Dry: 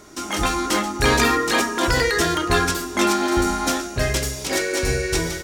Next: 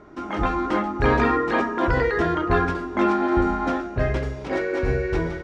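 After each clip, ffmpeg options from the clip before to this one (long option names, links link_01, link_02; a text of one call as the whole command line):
ffmpeg -i in.wav -af "lowpass=1500" out.wav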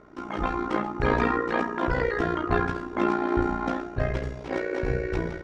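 ffmpeg -i in.wav -af "tremolo=f=59:d=0.75,volume=-1dB" out.wav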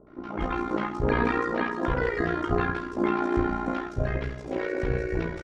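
ffmpeg -i in.wav -filter_complex "[0:a]acrossover=split=840|5000[link_01][link_02][link_03];[link_02]adelay=70[link_04];[link_03]adelay=240[link_05];[link_01][link_04][link_05]amix=inputs=3:normalize=0" out.wav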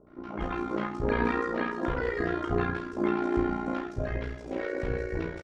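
ffmpeg -i in.wav -filter_complex "[0:a]asplit=2[link_01][link_02];[link_02]adelay=34,volume=-7dB[link_03];[link_01][link_03]amix=inputs=2:normalize=0,volume=-4dB" out.wav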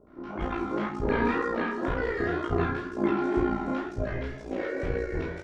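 ffmpeg -i in.wav -af "flanger=delay=19:depth=7.5:speed=2,volume=4dB" out.wav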